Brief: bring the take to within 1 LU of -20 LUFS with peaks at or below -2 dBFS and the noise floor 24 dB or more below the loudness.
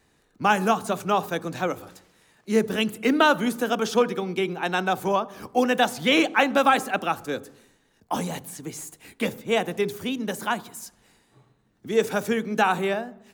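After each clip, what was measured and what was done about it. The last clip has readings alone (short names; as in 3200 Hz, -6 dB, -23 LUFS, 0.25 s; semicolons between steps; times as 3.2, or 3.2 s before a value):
loudness -24.5 LUFS; peak -4.5 dBFS; loudness target -20.0 LUFS
-> gain +4.5 dB; limiter -2 dBFS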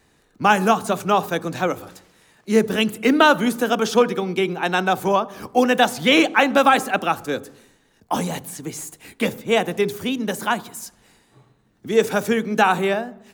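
loudness -20.0 LUFS; peak -2.0 dBFS; noise floor -60 dBFS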